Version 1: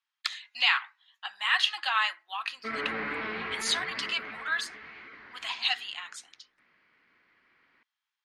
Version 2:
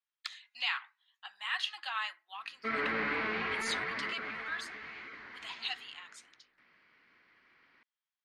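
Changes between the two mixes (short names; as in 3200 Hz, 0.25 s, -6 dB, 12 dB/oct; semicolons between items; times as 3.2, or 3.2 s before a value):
speech -9.5 dB; background: remove air absorption 84 m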